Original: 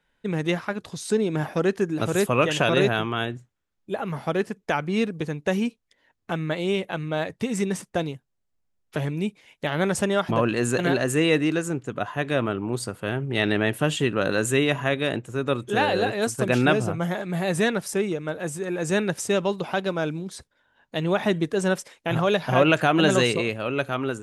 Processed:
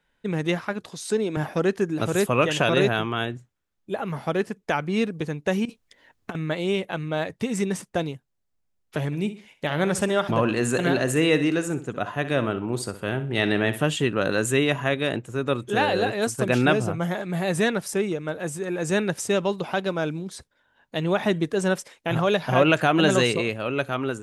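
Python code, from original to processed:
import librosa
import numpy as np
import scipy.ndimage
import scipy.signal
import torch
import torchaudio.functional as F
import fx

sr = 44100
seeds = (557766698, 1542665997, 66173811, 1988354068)

y = fx.bessel_highpass(x, sr, hz=230.0, order=2, at=(0.86, 1.37))
y = fx.over_compress(y, sr, threshold_db=-32.0, ratio=-0.5, at=(5.65, 6.35))
y = fx.echo_feedback(y, sr, ms=63, feedback_pct=32, wet_db=-13.0, at=(9.11, 13.81), fade=0.02)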